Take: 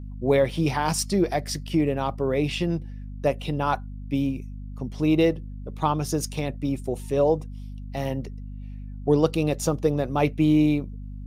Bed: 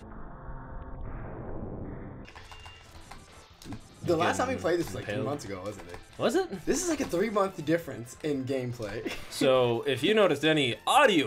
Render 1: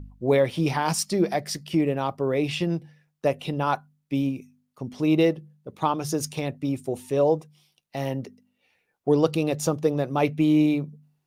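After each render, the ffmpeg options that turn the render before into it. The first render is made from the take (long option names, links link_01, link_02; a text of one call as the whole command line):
ffmpeg -i in.wav -af "bandreject=frequency=50:width_type=h:width=4,bandreject=frequency=100:width_type=h:width=4,bandreject=frequency=150:width_type=h:width=4,bandreject=frequency=200:width_type=h:width=4,bandreject=frequency=250:width_type=h:width=4" out.wav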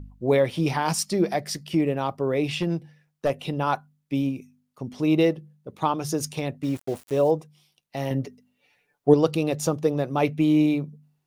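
ffmpeg -i in.wav -filter_complex "[0:a]asettb=1/sr,asplit=3[link_01][link_02][link_03];[link_01]atrim=end=2.594[link_04];[link_02]atrim=start=2.59:end=3.3,asetpts=PTS-STARTPTS,afade=type=in:duration=0.004:curve=qsin,afade=type=out:start_time=0.706:duration=0.004:curve=qsin,aeval=exprs='clip(val(0),-1,0.126)':channel_layout=same[link_05];[link_03]atrim=start=3.296[link_06];[link_04][link_05]acrossfade=duration=0.004:curve1=hsin:curve2=qsin[link_07];[link_07][link_06]acrossfade=duration=0.004:curve1=qsin:curve2=hsin,asettb=1/sr,asplit=3[link_08][link_09][link_10];[link_08]atrim=end=6.634[link_11];[link_09]atrim=start=6.63:end=7.31,asetpts=PTS-STARTPTS,afade=type=in:duration=0.004:curve=qsin,afade=type=out:start_time=0.676:duration=0.004:curve=qsin,aeval=exprs='val(0)*gte(abs(val(0)),0.0133)':channel_layout=same[link_12];[link_10]atrim=start=7.306[link_13];[link_11][link_12]acrossfade=duration=0.004:curve1=hsin:curve2=qsin[link_14];[link_14][link_13]acrossfade=duration=0.004:curve1=qsin:curve2=hsin,asettb=1/sr,asplit=3[link_15][link_16][link_17];[link_15]atrim=end=8.104[link_18];[link_16]atrim=start=8.1:end=9.14,asetpts=PTS-STARTPTS,afade=type=in:duration=0.004:curve=qsin,afade=type=out:start_time=1.036:duration=0.004:curve=qsin,aecho=1:1:6.9:0.89,atrim=end_sample=45864[link_19];[link_17]atrim=start=9.136[link_20];[link_18][link_19]acrossfade=duration=0.004:curve1=hsin:curve2=qsin[link_21];[link_21][link_20]acrossfade=duration=0.004:curve1=qsin:curve2=hsin" out.wav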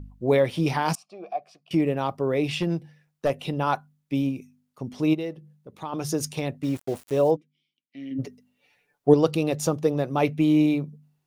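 ffmpeg -i in.wav -filter_complex "[0:a]asettb=1/sr,asplit=3[link_01][link_02][link_03];[link_01]atrim=end=0.954[link_04];[link_02]atrim=start=0.95:end=1.71,asetpts=PTS-STARTPTS,afade=type=in:duration=0.004:curve=qsin,afade=type=out:start_time=0.756:duration=0.004:curve=qsin,asplit=3[link_05][link_06][link_07];[link_05]bandpass=frequency=730:width_type=q:width=8,volume=0dB[link_08];[link_06]bandpass=frequency=1090:width_type=q:width=8,volume=-6dB[link_09];[link_07]bandpass=frequency=2440:width_type=q:width=8,volume=-9dB[link_10];[link_08][link_09][link_10]amix=inputs=3:normalize=0[link_11];[link_03]atrim=start=1.706[link_12];[link_04][link_11]acrossfade=duration=0.004:curve1=hsin:curve2=qsin[link_13];[link_13][link_12]acrossfade=duration=0.004:curve1=qsin:curve2=hsin,asplit=3[link_14][link_15][link_16];[link_14]afade=type=out:start_time=5.13:duration=0.02[link_17];[link_15]acompressor=threshold=-48dB:ratio=1.5:attack=3.2:release=140:knee=1:detection=peak,afade=type=in:start_time=5.13:duration=0.02,afade=type=out:start_time=5.92:duration=0.02[link_18];[link_16]afade=type=in:start_time=5.92:duration=0.02[link_19];[link_17][link_18][link_19]amix=inputs=3:normalize=0,asplit=3[link_20][link_21][link_22];[link_20]afade=type=out:start_time=7.35:duration=0.02[link_23];[link_21]asplit=3[link_24][link_25][link_26];[link_24]bandpass=frequency=270:width_type=q:width=8,volume=0dB[link_27];[link_25]bandpass=frequency=2290:width_type=q:width=8,volume=-6dB[link_28];[link_26]bandpass=frequency=3010:width_type=q:width=8,volume=-9dB[link_29];[link_27][link_28][link_29]amix=inputs=3:normalize=0,afade=type=in:start_time=7.35:duration=0.02,afade=type=out:start_time=8.18:duration=0.02[link_30];[link_22]afade=type=in:start_time=8.18:duration=0.02[link_31];[link_23][link_30][link_31]amix=inputs=3:normalize=0" out.wav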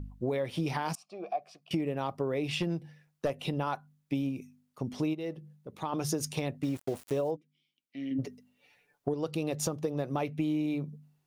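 ffmpeg -i in.wav -af "alimiter=limit=-13dB:level=0:latency=1:release=388,acompressor=threshold=-28dB:ratio=6" out.wav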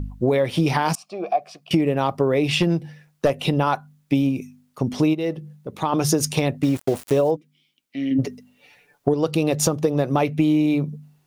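ffmpeg -i in.wav -af "volume=12dB" out.wav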